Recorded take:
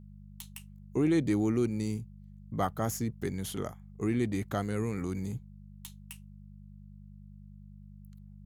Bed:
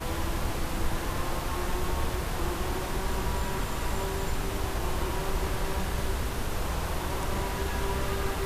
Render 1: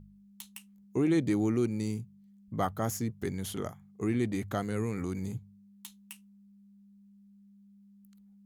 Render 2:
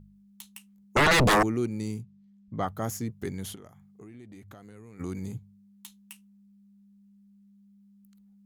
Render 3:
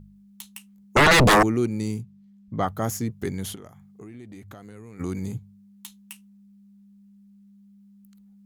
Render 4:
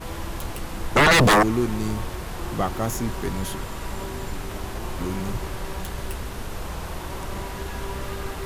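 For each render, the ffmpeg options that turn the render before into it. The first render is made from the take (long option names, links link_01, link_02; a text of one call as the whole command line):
ffmpeg -i in.wav -af "bandreject=frequency=50:width_type=h:width=4,bandreject=frequency=100:width_type=h:width=4,bandreject=frequency=150:width_type=h:width=4" out.wav
ffmpeg -i in.wav -filter_complex "[0:a]asettb=1/sr,asplit=3[link_01][link_02][link_03];[link_01]atrim=end=0.964[link_04];[link_02]atrim=start=0.96:end=1.43,asetpts=PTS-STARTPTS,afade=type=in:duration=0.004:curve=qsin,afade=type=out:start_time=0.466:duration=0.004:curve=qsin,aeval=exprs='0.141*sin(PI/2*7.08*val(0)/0.141)':channel_layout=same[link_05];[link_03]atrim=start=1.426[link_06];[link_04][link_05]acrossfade=duration=0.004:curve1=hsin:curve2=qsin[link_07];[link_07][link_06]acrossfade=duration=0.004:curve1=qsin:curve2=hsin,asplit=3[link_08][link_09][link_10];[link_08]afade=type=out:start_time=2.02:duration=0.02[link_11];[link_09]lowpass=5400,afade=type=in:start_time=2.02:duration=0.02,afade=type=out:start_time=2.66:duration=0.02[link_12];[link_10]afade=type=in:start_time=2.66:duration=0.02[link_13];[link_11][link_12][link_13]amix=inputs=3:normalize=0,asplit=3[link_14][link_15][link_16];[link_14]afade=type=out:start_time=3.54:duration=0.02[link_17];[link_15]acompressor=threshold=-46dB:ratio=5:attack=3.2:release=140:knee=1:detection=peak,afade=type=in:start_time=3.54:duration=0.02,afade=type=out:start_time=4.99:duration=0.02[link_18];[link_16]afade=type=in:start_time=4.99:duration=0.02[link_19];[link_17][link_18][link_19]amix=inputs=3:normalize=0" out.wav
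ffmpeg -i in.wav -af "volume=5dB" out.wav
ffmpeg -i in.wav -i bed.wav -filter_complex "[1:a]volume=-1.5dB[link_01];[0:a][link_01]amix=inputs=2:normalize=0" out.wav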